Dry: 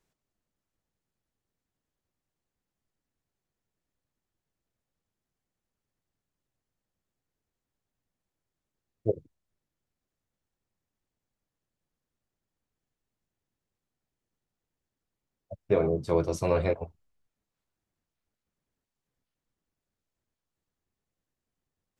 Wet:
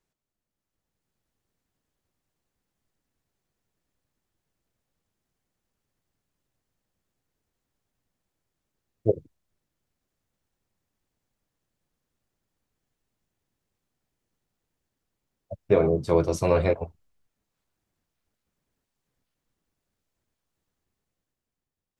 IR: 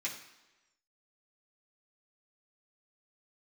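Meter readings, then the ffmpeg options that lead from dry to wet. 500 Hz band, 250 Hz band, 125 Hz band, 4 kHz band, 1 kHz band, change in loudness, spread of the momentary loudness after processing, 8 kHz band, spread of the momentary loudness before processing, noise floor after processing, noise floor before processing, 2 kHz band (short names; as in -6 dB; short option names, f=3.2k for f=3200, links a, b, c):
+4.0 dB, +4.0 dB, +4.0 dB, +4.0 dB, +4.0 dB, +4.0 dB, 17 LU, +4.0 dB, 9 LU, under -85 dBFS, under -85 dBFS, +4.0 dB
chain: -af "dynaudnorm=f=100:g=17:m=9dB,volume=-3.5dB"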